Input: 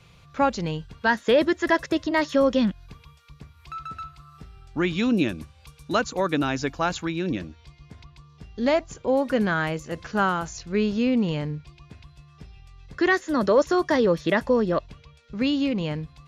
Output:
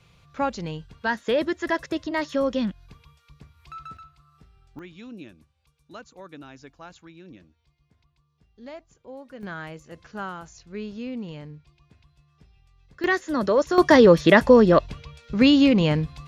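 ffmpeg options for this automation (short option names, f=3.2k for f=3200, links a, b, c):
-af "asetnsamples=n=441:p=0,asendcmd='3.97 volume volume -10dB;4.79 volume volume -19dB;9.43 volume volume -11dB;13.04 volume volume -1.5dB;13.78 volume volume 7.5dB',volume=-4dB"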